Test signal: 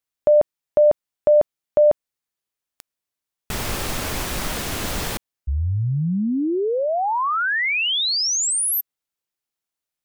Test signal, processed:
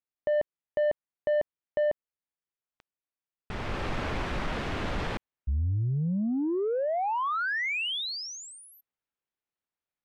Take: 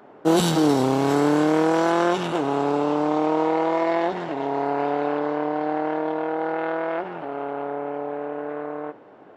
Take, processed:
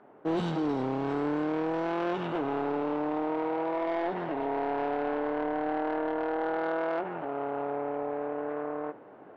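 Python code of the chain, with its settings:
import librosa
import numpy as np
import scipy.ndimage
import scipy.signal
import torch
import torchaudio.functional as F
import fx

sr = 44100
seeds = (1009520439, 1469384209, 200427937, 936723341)

y = scipy.signal.sosfilt(scipy.signal.butter(2, 2500.0, 'lowpass', fs=sr, output='sos'), x)
y = fx.rider(y, sr, range_db=3, speed_s=0.5)
y = 10.0 ** (-16.5 / 20.0) * np.tanh(y / 10.0 ** (-16.5 / 20.0))
y = y * 10.0 ** (-5.5 / 20.0)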